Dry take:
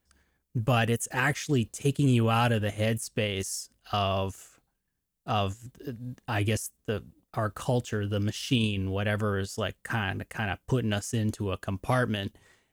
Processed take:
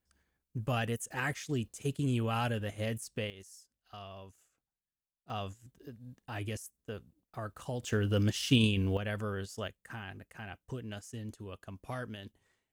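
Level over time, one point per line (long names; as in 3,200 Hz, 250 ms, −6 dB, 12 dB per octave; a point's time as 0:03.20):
−8 dB
from 0:03.30 −20 dB
from 0:05.30 −11 dB
from 0:07.83 0 dB
from 0:08.97 −8 dB
from 0:09.68 −14 dB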